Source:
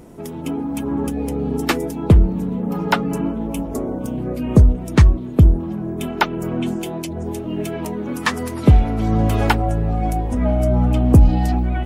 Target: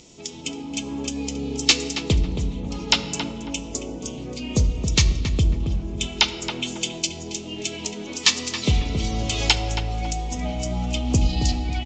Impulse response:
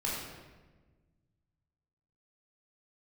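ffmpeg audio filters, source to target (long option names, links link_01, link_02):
-filter_complex "[0:a]asplit=2[link_01][link_02];[link_02]adelay=273,lowpass=frequency=1600:poles=1,volume=-6dB,asplit=2[link_03][link_04];[link_04]adelay=273,lowpass=frequency=1600:poles=1,volume=0.33,asplit=2[link_05][link_06];[link_06]adelay=273,lowpass=frequency=1600:poles=1,volume=0.33,asplit=2[link_07][link_08];[link_08]adelay=273,lowpass=frequency=1600:poles=1,volume=0.33[link_09];[link_01][link_03][link_05][link_07][link_09]amix=inputs=5:normalize=0,aexciter=amount=10.9:drive=5.4:freq=2400,aresample=16000,aresample=44100,asplit=2[link_10][link_11];[1:a]atrim=start_sample=2205[link_12];[link_11][link_12]afir=irnorm=-1:irlink=0,volume=-15.5dB[link_13];[link_10][link_13]amix=inputs=2:normalize=0,volume=-11dB"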